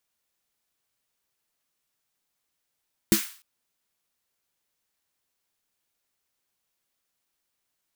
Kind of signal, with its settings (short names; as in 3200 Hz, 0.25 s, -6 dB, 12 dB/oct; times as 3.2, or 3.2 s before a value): snare drum length 0.30 s, tones 210 Hz, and 330 Hz, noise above 1200 Hz, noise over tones -6 dB, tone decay 0.12 s, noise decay 0.44 s